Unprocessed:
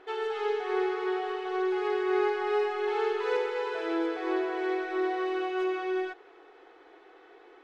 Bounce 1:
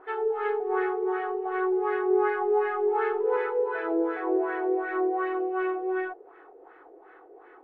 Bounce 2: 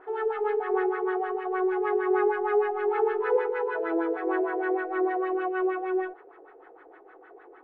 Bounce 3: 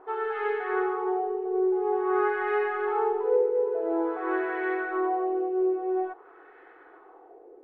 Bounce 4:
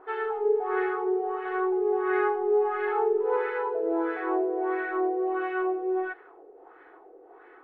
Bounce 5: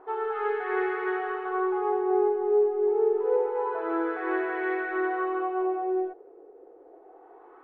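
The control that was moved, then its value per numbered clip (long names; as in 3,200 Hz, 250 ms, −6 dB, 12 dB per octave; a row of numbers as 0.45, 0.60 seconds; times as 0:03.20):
auto-filter low-pass, speed: 2.7, 6.5, 0.49, 1.5, 0.27 Hertz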